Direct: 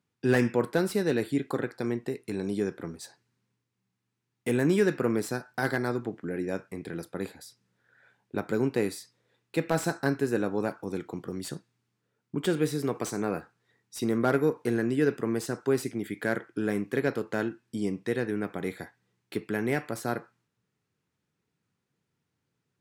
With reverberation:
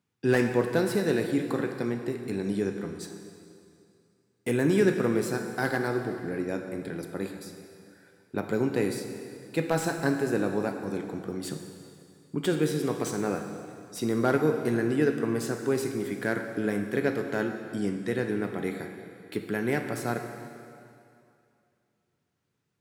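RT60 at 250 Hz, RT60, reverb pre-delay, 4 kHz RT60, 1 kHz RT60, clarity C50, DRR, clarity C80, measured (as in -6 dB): 2.4 s, 2.5 s, 7 ms, 2.3 s, 2.5 s, 6.5 dB, 5.5 dB, 7.0 dB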